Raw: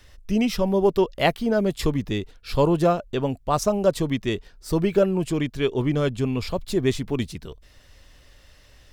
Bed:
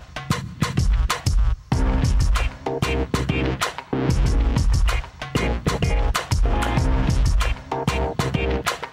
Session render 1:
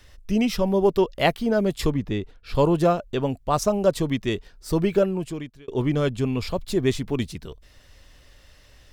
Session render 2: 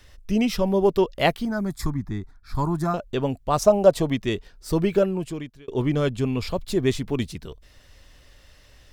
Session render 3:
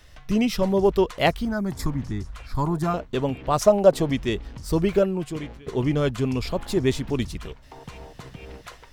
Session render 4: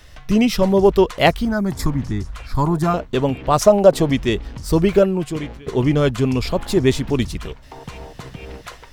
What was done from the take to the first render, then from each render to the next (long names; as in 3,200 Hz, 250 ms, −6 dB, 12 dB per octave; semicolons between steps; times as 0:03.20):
0:01.90–0:02.55: high-shelf EQ 4,000 Hz −11.5 dB; 0:04.92–0:05.68: fade out
0:01.45–0:02.94: phaser with its sweep stopped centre 1,200 Hz, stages 4; 0:03.60–0:04.15: parametric band 700 Hz +9 dB 0.65 octaves
mix in bed −19 dB
level +6 dB; brickwall limiter −1 dBFS, peak gain reduction 2.5 dB